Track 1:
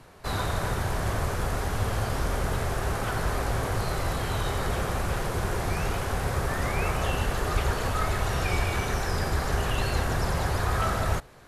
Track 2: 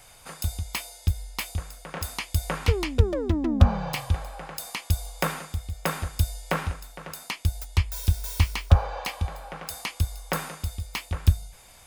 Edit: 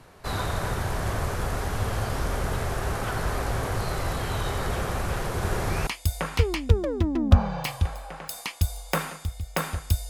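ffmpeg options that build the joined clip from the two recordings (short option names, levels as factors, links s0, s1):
-filter_complex "[0:a]asplit=3[s0][s1][s2];[s0]afade=t=out:st=5.41:d=0.02[s3];[s1]aecho=1:1:77:0.562,afade=t=in:st=5.41:d=0.02,afade=t=out:st=5.87:d=0.02[s4];[s2]afade=t=in:st=5.87:d=0.02[s5];[s3][s4][s5]amix=inputs=3:normalize=0,apad=whole_dur=10.09,atrim=end=10.09,atrim=end=5.872[s6];[1:a]atrim=start=2.158:end=6.38[s7];[s6][s7]acrossfade=d=0.004:c1=hsin:c2=hsin"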